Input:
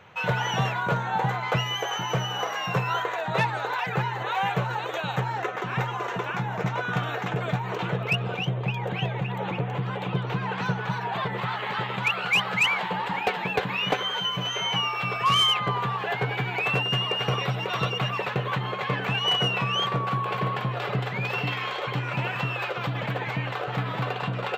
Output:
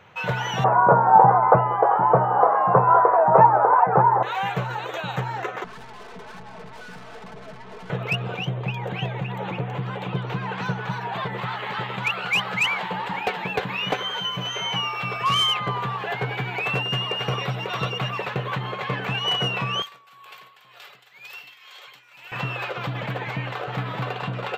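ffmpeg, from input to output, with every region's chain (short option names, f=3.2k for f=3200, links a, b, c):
-filter_complex "[0:a]asettb=1/sr,asplit=3[a][b][c];[a]atrim=end=0.644[d];[b]atrim=start=0.64:end=4.23,asetpts=PTS-STARTPTS,afade=t=in:d=0.004:c=qsin,afade=t=out:st=3.586:d=0.004:c=qsin,lowpass=f=1.2k:w=0.5412,lowpass=f=1.2k:w=1.3066,equalizer=f=840:t=o:w=2.9:g=15[e];[c]atrim=start=4.226[f];[d][e]acrossfade=d=0.004:c1=hsin:c2=qsin[g];[g][f]acrossfade=d=0.004:c1=qsin:c2=hsin,asettb=1/sr,asplit=3[h][i][j];[h]atrim=end=5.644[k];[i]atrim=start=5.64:end=7.9,asetpts=PTS-STARTPTS,afade=t=in:d=0.004:c=qsin,afade=t=out:st=2.256:d=0.004:c=qsin,lowpass=1.4k,aeval=exprs='(tanh(112*val(0)+0.5)-tanh(0.5))/112':c=same,aecho=1:1:4.6:0.77,atrim=end_sample=99666[l];[j]atrim=start=7.896[m];[k][l]acrossfade=d=0.004:c1=hsin:c2=qsin[n];[n][m]acrossfade=d=0.004:c1=qsin:c2=hsin,asettb=1/sr,asplit=3[o][p][q];[o]atrim=end=19.824[r];[p]atrim=start=19.82:end=22.32,asetpts=PTS-STARTPTS,afade=t=in:d=0.004:c=qsin,afade=t=out:st=2.496:d=0.004:c=qsin,aderivative,tremolo=f=2:d=0.66[s];[q]atrim=start=22.316[t];[r][s]acrossfade=d=0.004:c1=hsin:c2=qsin[u];[u][t]acrossfade=d=0.004:c1=qsin:c2=hsin"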